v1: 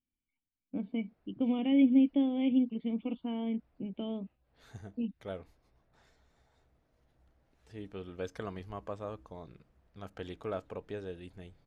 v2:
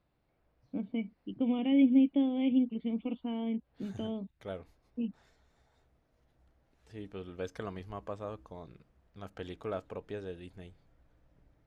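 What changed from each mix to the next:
second voice: entry −0.80 s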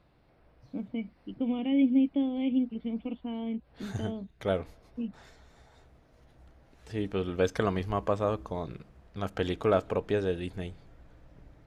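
second voice +11.5 dB
reverb: on, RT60 1.5 s

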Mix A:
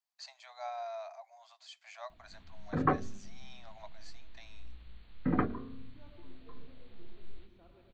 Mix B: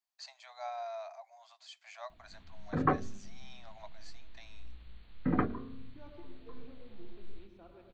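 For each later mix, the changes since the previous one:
second voice +6.5 dB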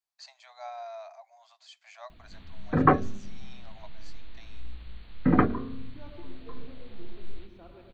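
second voice +4.5 dB
background +8.5 dB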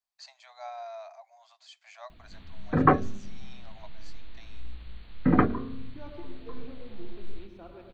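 second voice +4.0 dB

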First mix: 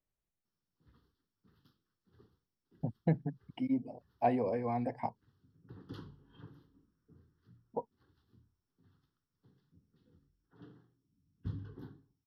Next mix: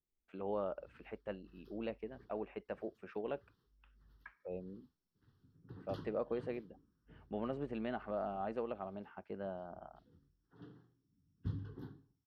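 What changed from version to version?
first voice: unmuted
second voice: muted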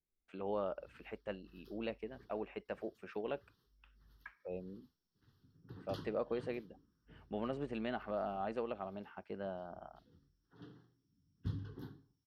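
master: add high-shelf EQ 2,900 Hz +9.5 dB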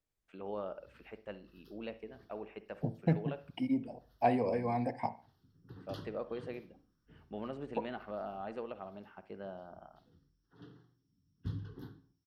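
first voice −3.0 dB
second voice: unmuted
reverb: on

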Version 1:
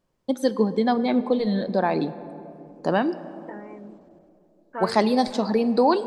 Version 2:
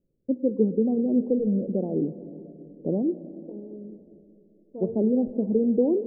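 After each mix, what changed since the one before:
second voice: send +11.5 dB
master: add Butterworth low-pass 500 Hz 36 dB per octave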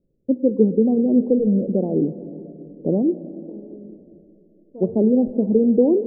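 first voice +6.0 dB

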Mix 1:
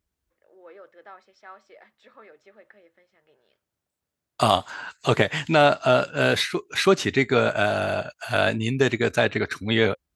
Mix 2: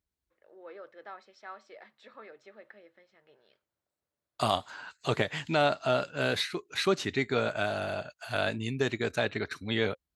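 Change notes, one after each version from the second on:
second voice −8.5 dB
master: add parametric band 4,100 Hz +4.5 dB 0.28 octaves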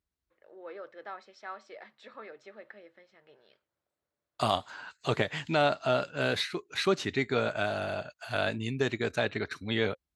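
first voice +3.0 dB
second voice: add high-shelf EQ 10,000 Hz −6.5 dB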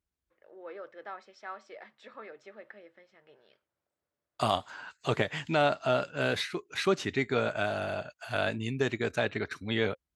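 master: add parametric band 4,100 Hz −4.5 dB 0.28 octaves

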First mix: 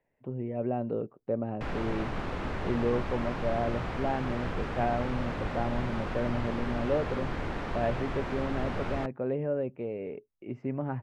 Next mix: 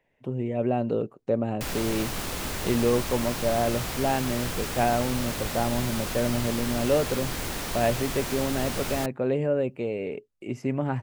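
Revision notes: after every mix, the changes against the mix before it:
speech +5.5 dB
master: remove low-pass filter 1,800 Hz 12 dB per octave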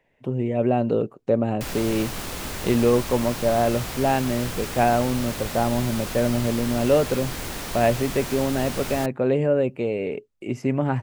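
speech +4.5 dB

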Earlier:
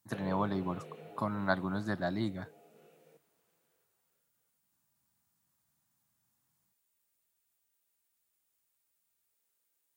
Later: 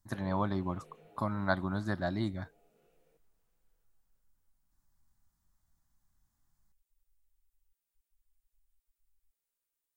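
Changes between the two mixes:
background −9.0 dB
master: remove high-pass filter 110 Hz 24 dB per octave

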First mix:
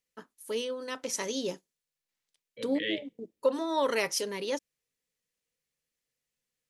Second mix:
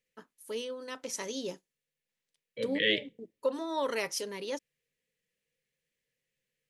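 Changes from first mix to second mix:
first voice −4.0 dB
second voice +6.5 dB

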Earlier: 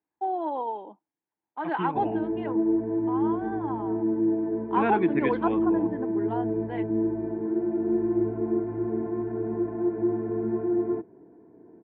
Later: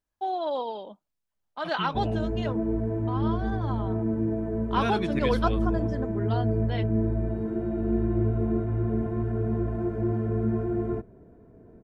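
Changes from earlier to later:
second voice −6.0 dB
master: remove loudspeaker in its box 220–2,100 Hz, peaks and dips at 220 Hz −3 dB, 320 Hz +9 dB, 590 Hz −8 dB, 880 Hz +7 dB, 1,300 Hz −8 dB

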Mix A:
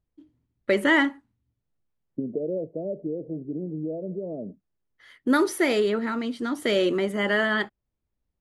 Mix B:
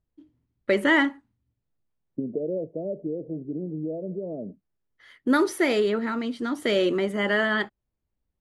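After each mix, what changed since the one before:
master: add high-shelf EQ 9,300 Hz −5.5 dB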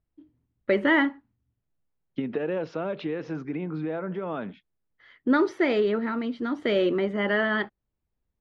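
second voice: remove Chebyshev low-pass filter 630 Hz, order 5
master: add high-frequency loss of the air 210 metres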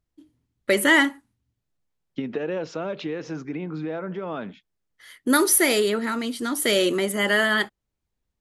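first voice: remove head-to-tape spacing loss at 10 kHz 21 dB
master: remove high-frequency loss of the air 210 metres

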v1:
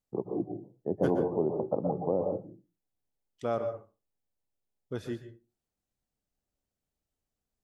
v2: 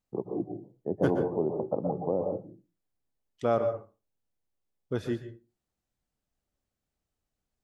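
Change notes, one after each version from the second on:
second voice +5.0 dB
master: add high-shelf EQ 4,600 Hz −5 dB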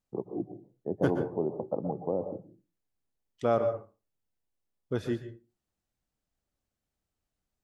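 first voice: send −7.0 dB

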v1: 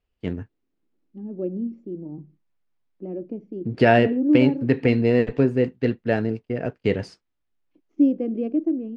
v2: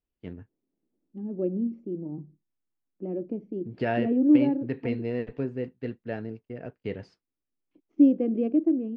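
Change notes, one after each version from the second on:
first voice −11.5 dB
master: add high-frequency loss of the air 99 metres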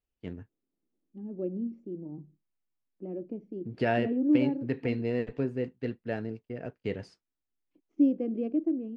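second voice −5.5 dB
master: remove high-frequency loss of the air 99 metres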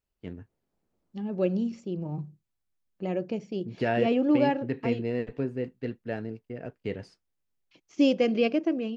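second voice: remove resonant band-pass 290 Hz, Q 2.9

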